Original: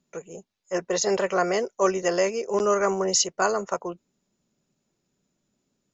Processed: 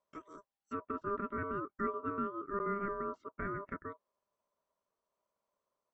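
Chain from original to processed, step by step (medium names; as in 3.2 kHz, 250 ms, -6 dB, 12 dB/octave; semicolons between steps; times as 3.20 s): low-pass that closes with the level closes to 670 Hz, closed at -23 dBFS; ring modulator 800 Hz; low-pass 2.2 kHz 6 dB/octave; trim -8.5 dB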